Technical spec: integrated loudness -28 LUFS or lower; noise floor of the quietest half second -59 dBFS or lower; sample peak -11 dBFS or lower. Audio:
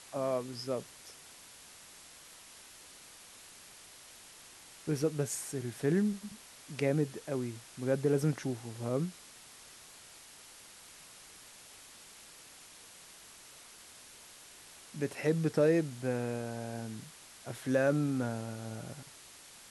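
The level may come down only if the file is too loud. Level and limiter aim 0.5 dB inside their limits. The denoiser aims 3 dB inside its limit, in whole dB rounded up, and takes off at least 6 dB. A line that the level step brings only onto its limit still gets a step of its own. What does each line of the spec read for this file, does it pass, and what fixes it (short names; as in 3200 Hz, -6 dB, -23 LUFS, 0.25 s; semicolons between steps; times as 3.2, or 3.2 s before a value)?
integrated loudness -34.0 LUFS: OK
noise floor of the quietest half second -54 dBFS: fail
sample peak -16.5 dBFS: OK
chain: denoiser 8 dB, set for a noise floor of -54 dBFS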